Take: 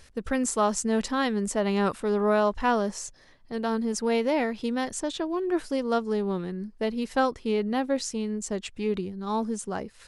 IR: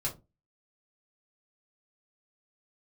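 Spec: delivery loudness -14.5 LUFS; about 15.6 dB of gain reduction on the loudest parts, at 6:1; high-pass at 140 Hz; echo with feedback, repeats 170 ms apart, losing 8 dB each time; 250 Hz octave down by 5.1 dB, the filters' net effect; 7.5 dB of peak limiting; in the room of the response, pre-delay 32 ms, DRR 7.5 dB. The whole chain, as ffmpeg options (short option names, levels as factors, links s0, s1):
-filter_complex "[0:a]highpass=140,equalizer=f=250:t=o:g=-5.5,acompressor=threshold=0.0141:ratio=6,alimiter=level_in=2.37:limit=0.0631:level=0:latency=1,volume=0.422,aecho=1:1:170|340|510|680|850:0.398|0.159|0.0637|0.0255|0.0102,asplit=2[s0][s1];[1:a]atrim=start_sample=2205,adelay=32[s2];[s1][s2]afir=irnorm=-1:irlink=0,volume=0.282[s3];[s0][s3]amix=inputs=2:normalize=0,volume=18.8"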